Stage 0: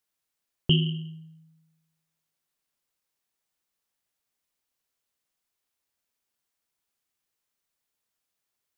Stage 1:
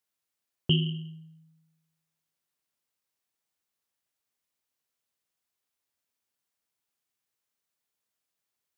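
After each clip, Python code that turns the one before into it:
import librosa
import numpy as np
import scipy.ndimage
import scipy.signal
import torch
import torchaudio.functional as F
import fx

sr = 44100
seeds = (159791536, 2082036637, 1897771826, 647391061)

y = scipy.signal.sosfilt(scipy.signal.butter(2, 60.0, 'highpass', fs=sr, output='sos'), x)
y = y * 10.0 ** (-2.5 / 20.0)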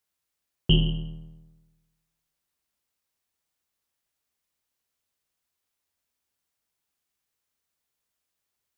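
y = fx.octave_divider(x, sr, octaves=2, level_db=0.0)
y = y * 10.0 ** (2.5 / 20.0)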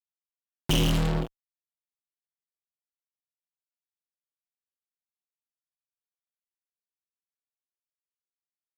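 y = fx.noise_reduce_blind(x, sr, reduce_db=6)
y = fx.tremolo_random(y, sr, seeds[0], hz=3.5, depth_pct=55)
y = fx.fuzz(y, sr, gain_db=51.0, gate_db=-41.0)
y = y * 10.0 ** (-7.5 / 20.0)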